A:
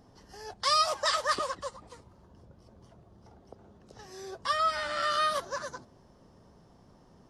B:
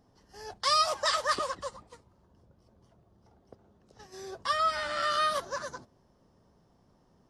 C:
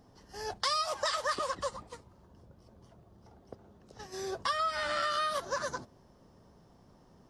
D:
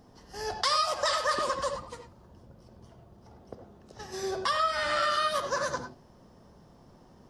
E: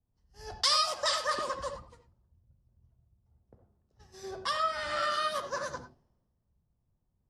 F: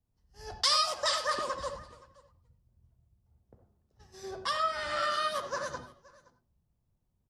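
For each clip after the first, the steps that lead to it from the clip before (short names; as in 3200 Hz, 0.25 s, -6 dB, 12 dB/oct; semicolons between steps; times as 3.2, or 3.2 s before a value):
gate -48 dBFS, range -7 dB
compressor 6:1, threshold -34 dBFS, peak gain reduction 12.5 dB; gain +5 dB
reverb, pre-delay 3 ms, DRR 5.5 dB; gain +3.5 dB
three-band expander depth 100%; gain -5 dB
echo 0.523 s -23 dB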